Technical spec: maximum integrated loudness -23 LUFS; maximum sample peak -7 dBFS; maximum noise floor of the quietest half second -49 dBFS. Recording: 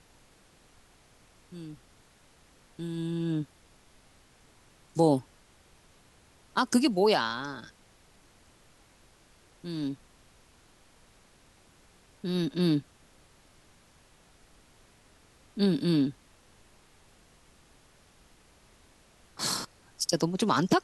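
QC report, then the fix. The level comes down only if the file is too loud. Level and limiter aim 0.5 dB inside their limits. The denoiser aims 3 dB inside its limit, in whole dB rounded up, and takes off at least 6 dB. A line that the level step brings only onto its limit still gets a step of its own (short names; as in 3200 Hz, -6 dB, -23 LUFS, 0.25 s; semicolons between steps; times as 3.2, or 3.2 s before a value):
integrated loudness -29.0 LUFS: OK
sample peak -11.0 dBFS: OK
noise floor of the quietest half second -60 dBFS: OK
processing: none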